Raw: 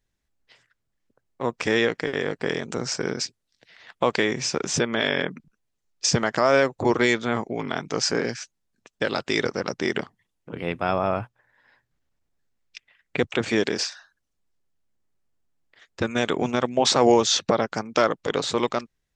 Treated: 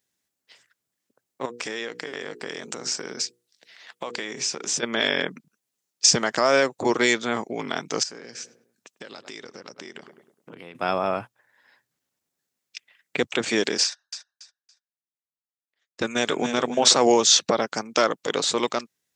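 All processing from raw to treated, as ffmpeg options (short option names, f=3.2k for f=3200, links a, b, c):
-filter_complex "[0:a]asettb=1/sr,asplit=3[a][b][c];[a]atrim=end=1.454[d];[b]atrim=start=1.45:end=4.83,asetpts=PTS-STARTPTS,afade=t=in:d=0.004:c=qsin,afade=t=out:st=3.376:d=0.004:c=qsin,bandreject=f=60:t=h:w=6,bandreject=f=120:t=h:w=6,bandreject=f=180:t=h:w=6,bandreject=f=240:t=h:w=6,bandreject=f=300:t=h:w=6,bandreject=f=360:t=h:w=6,bandreject=f=420:t=h:w=6,bandreject=f=480:t=h:w=6,acompressor=threshold=-29dB:ratio=3:attack=3.2:release=140:knee=1:detection=peak,lowshelf=f=180:g=-5.5[e];[c]atrim=start=4.826[f];[d][e]acrossfade=d=0.004:c1=hsin:c2=qsin[g];[g][f]acrossfade=d=0.004:c1=qsin:c2=hsin,asettb=1/sr,asplit=3[h][i][j];[h]atrim=end=8.034[k];[i]atrim=start=8.03:end=10.75,asetpts=PTS-STARTPTS,afade=t=in:d=0.004:c=qsin,afade=t=out:st=2.716:d=0.004:c=qsin,asplit=2[l][m];[m]adelay=102,lowpass=f=1.5k:p=1,volume=-20dB,asplit=2[n][o];[o]adelay=102,lowpass=f=1.5k:p=1,volume=0.47,asplit=2[p][q];[q]adelay=102,lowpass=f=1.5k:p=1,volume=0.47,asplit=2[r][s];[s]adelay=102,lowpass=f=1.5k:p=1,volume=0.47[t];[l][n][p][r][t]amix=inputs=5:normalize=0,atrim=end_sample=119952,acompressor=threshold=-37dB:ratio=6:attack=3.2:release=140:knee=1:detection=peak[u];[j]atrim=start=10.746[v];[k][u]acrossfade=d=0.004:c1=hsin:c2=qsin[w];[w][v]acrossfade=d=0.004:c1=qsin:c2=hsin,asettb=1/sr,asplit=3[x][y][z];[x]atrim=end=13.844[aa];[y]atrim=start=13.84:end=16.93,asetpts=PTS-STARTPTS,afade=t=in:d=0.004:c=qsin,afade=t=out:st=3.086:d=0.004:c=qsin,agate=range=-24dB:threshold=-42dB:ratio=16:release=100:detection=peak,aecho=1:1:282|564|846:0.355|0.0923|0.024,atrim=end_sample=136269[ab];[z]atrim=start=16.926[ac];[aa][ab]acrossfade=d=0.004:c1=hsin:c2=qsin[ad];[ad][ac]acrossfade=d=0.004:c1=qsin:c2=hsin,highpass=180,highshelf=f=4.6k:g=12,volume=-1dB"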